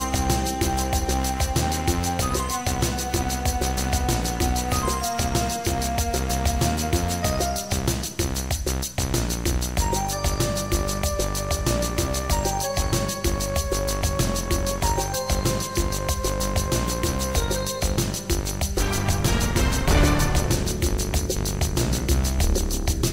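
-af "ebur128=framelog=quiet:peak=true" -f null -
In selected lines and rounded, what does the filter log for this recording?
Integrated loudness:
  I:         -24.0 LUFS
  Threshold: -34.0 LUFS
Loudness range:
  LRA:         2.1 LU
  Threshold: -44.1 LUFS
  LRA low:   -24.8 LUFS
  LRA high:  -22.7 LUFS
True peak:
  Peak:      -10.3 dBFS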